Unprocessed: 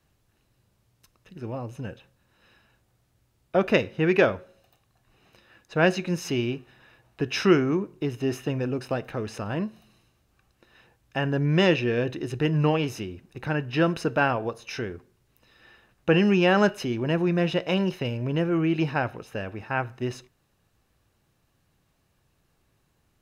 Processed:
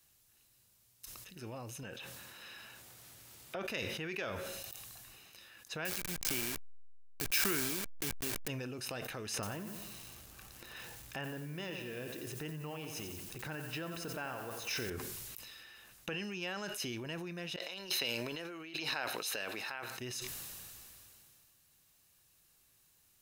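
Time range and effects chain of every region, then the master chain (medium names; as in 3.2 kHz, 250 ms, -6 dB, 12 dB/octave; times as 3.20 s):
1.83–3.65 s: high-pass 180 Hz 6 dB/octave + treble shelf 4 kHz -9 dB + upward compressor, threshold -35 dBFS
5.85–8.48 s: send-on-delta sampling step -26.5 dBFS + small resonant body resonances 1.6/2.3 kHz, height 8 dB, ringing for 20 ms
9.34–14.90 s: treble shelf 2.2 kHz -10 dB + upward compressor, threshold -31 dBFS + bit-crushed delay 89 ms, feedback 55%, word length 8-bit, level -9 dB
17.56–19.98 s: Bessel high-pass 390 Hz + peaking EQ 4.1 kHz +12 dB 0.21 oct + compressor with a negative ratio -39 dBFS
whole clip: compression 6:1, threshold -32 dBFS; pre-emphasis filter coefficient 0.9; decay stretcher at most 20 dB/s; trim +9 dB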